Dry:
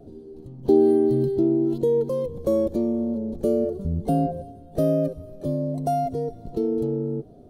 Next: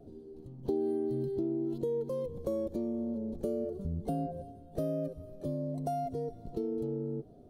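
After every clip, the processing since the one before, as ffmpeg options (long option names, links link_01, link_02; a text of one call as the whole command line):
ffmpeg -i in.wav -af "acompressor=threshold=-25dB:ratio=2.5,volume=-7dB" out.wav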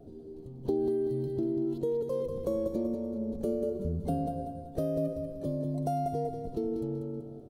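ffmpeg -i in.wav -af "aecho=1:1:191|382|573|764|955:0.447|0.188|0.0788|0.0331|0.0139,volume=2dB" out.wav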